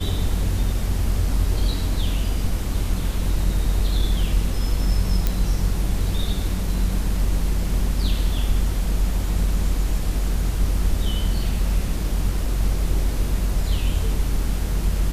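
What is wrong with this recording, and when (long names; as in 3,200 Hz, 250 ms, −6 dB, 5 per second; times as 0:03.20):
0:05.27: click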